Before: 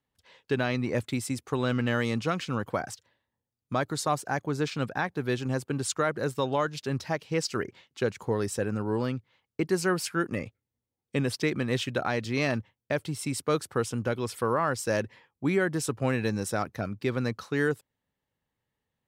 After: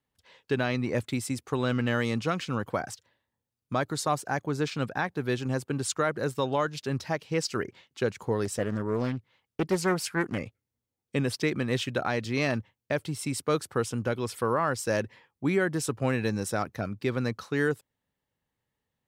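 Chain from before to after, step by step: 8.45–10.38 s: loudspeaker Doppler distortion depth 0.39 ms

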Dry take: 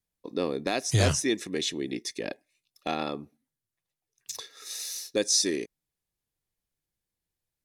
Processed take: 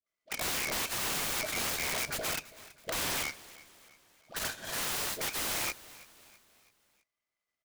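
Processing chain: split-band scrambler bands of 2 kHz; gate -51 dBFS, range -11 dB; in parallel at 0 dB: compression, threshold -33 dBFS, peak gain reduction 14 dB; on the sum: peak limiter -18 dBFS, peak gain reduction 10 dB; small resonant body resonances 640/1200/3100 Hz, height 17 dB, ringing for 65 ms; phase dispersion highs, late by 75 ms, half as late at 1 kHz; integer overflow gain 28 dB; on a send: feedback delay 328 ms, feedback 47%, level -19 dB; on the sum: delay time shaken by noise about 3 kHz, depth 0.044 ms; trim +1 dB

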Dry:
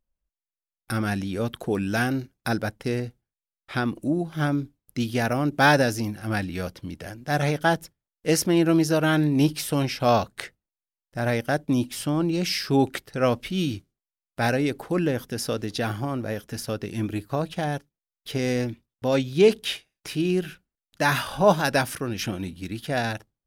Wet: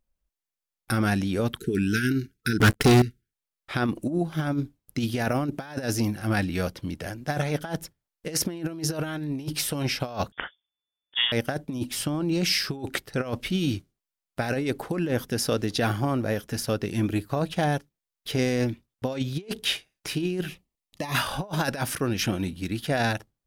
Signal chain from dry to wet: 1.58–3.33 s: spectral selection erased 460–1300 Hz; compressor with a negative ratio -25 dBFS, ratio -0.5; 2.60–3.02 s: waveshaping leveller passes 5; 10.32–11.32 s: frequency inversion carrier 3.5 kHz; 20.48–21.15 s: Butterworth band-stop 1.5 kHz, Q 2.6

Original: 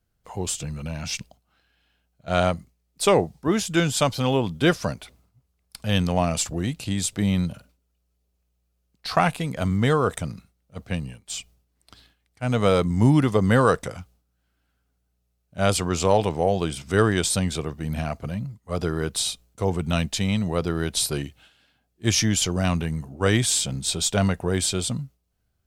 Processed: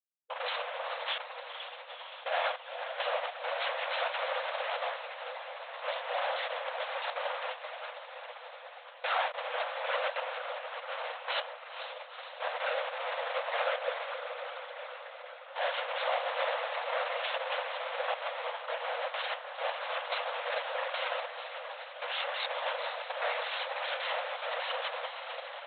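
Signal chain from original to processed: frequency axis rescaled in octaves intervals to 109%; in parallel at -2 dB: compression, threshold -30 dBFS, peak gain reduction 15 dB; on the sum: Schmitt trigger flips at -31 dBFS; on a send: echo that smears into a reverb 483 ms, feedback 69%, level -8 dB; on the sum: LPC vocoder at 8 kHz whisper; brick-wall FIR high-pass 480 Hz; trim -3 dB

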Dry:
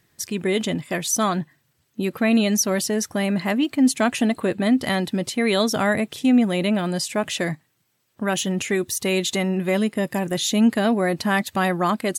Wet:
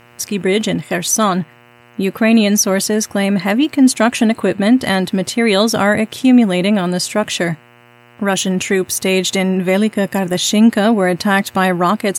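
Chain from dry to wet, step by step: mains buzz 120 Hz, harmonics 25, -53 dBFS -2 dB/octave; trim +7 dB

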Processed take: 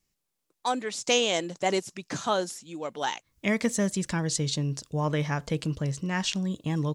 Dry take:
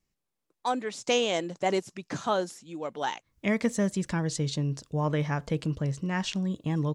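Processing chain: treble shelf 2.9 kHz +7.5 dB

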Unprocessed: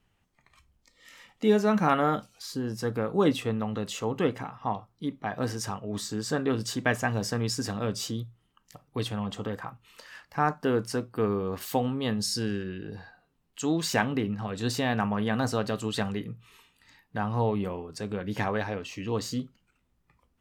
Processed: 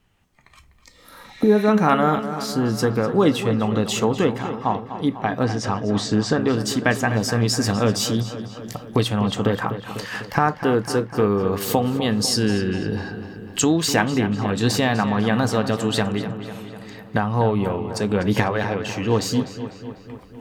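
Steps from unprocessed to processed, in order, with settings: recorder AGC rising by 8 dB/s; 0.99–1.64 s: spectral replace 1.7–9 kHz both; 5.43–6.41 s: distance through air 110 m; on a send: filtered feedback delay 249 ms, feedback 66%, low-pass 4.2 kHz, level -11 dB; on the sum: trim +6 dB

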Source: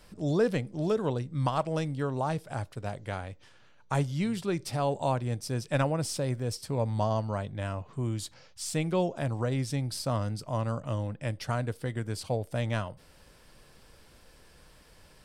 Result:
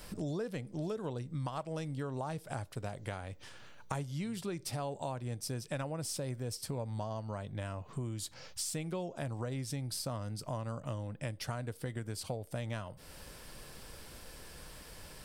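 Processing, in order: treble shelf 8.9 kHz +8.5 dB; compression 6:1, threshold -42 dBFS, peak gain reduction 19.5 dB; trim +5.5 dB

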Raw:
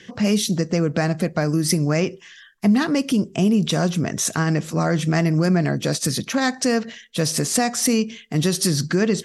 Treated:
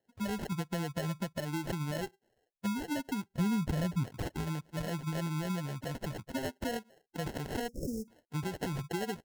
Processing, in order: expander on every frequency bin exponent 2; 0.52–1.37 s: bass shelf 380 Hz +7.5 dB; sample-and-hold 37×; compression 6:1, threshold -24 dBFS, peak gain reduction 10.5 dB; 3.32–4.04 s: bass shelf 160 Hz +11.5 dB; 7.68–8.08 s: Chebyshev band-stop 570–5300 Hz, order 5; trim -7.5 dB

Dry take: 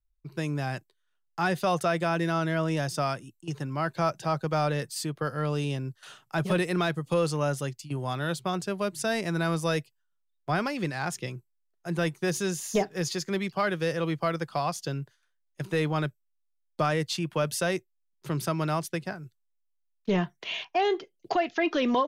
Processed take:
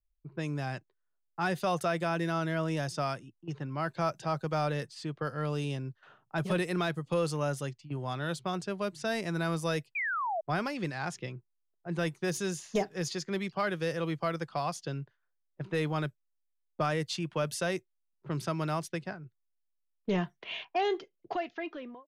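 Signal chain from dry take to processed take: fade out at the end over 1.06 s; level-controlled noise filter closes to 790 Hz, open at -24.5 dBFS; painted sound fall, 9.95–10.41 s, 610–2500 Hz -28 dBFS; trim -4 dB

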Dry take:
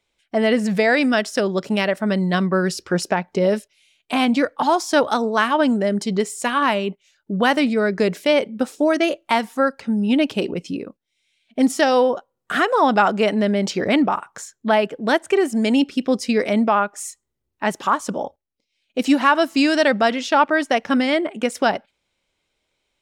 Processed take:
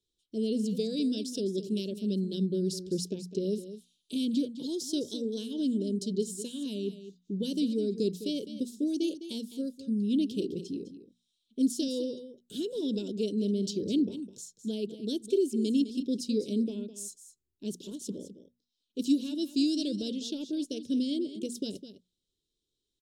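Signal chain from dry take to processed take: elliptic band-stop 410–3600 Hz, stop band 40 dB; hum notches 60/120/180/240 Hz; on a send: delay 207 ms -12.5 dB; on the sum: trim -8 dB

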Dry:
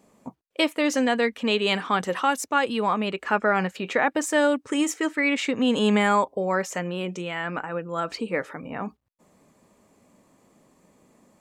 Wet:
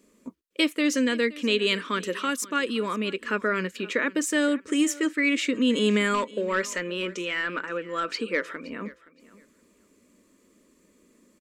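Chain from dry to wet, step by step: 6.14–8.69 s: overdrive pedal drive 11 dB, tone 3.8 kHz, clips at -9.5 dBFS; static phaser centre 320 Hz, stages 4; feedback delay 520 ms, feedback 19%, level -20 dB; trim +1 dB

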